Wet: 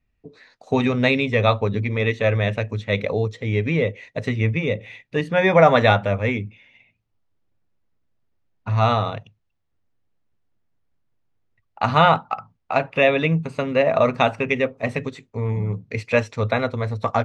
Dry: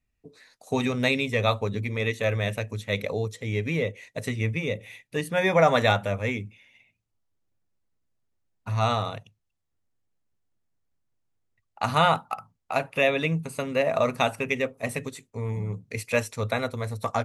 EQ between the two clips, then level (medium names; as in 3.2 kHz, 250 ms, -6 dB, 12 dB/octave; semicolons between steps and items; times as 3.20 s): distance through air 170 m; +6.5 dB